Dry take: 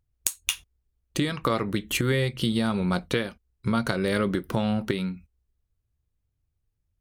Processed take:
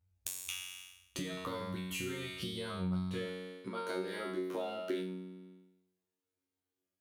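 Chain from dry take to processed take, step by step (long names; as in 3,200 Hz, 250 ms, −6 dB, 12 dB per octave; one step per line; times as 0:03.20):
tuned comb filter 92 Hz, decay 0.83 s, harmonics all, mix 100%
downward compressor 3 to 1, threshold −52 dBFS, peak gain reduction 17 dB
high-pass filter sweep 63 Hz → 340 Hz, 0:02.92–0:03.76
level +11.5 dB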